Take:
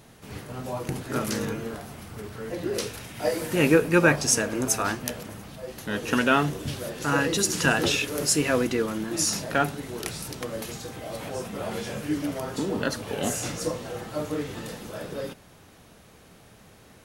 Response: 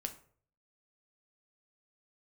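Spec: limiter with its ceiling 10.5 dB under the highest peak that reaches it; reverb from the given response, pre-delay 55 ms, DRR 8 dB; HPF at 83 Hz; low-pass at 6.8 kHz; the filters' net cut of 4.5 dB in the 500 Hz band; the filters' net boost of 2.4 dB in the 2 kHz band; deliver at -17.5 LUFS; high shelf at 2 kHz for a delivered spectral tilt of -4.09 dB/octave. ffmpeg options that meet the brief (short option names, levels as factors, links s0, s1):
-filter_complex "[0:a]highpass=83,lowpass=6800,equalizer=f=500:t=o:g=-5.5,highshelf=f=2000:g=-4.5,equalizer=f=2000:t=o:g=6.5,alimiter=limit=0.178:level=0:latency=1,asplit=2[s0][s1];[1:a]atrim=start_sample=2205,adelay=55[s2];[s1][s2]afir=irnorm=-1:irlink=0,volume=0.447[s3];[s0][s3]amix=inputs=2:normalize=0,volume=3.98"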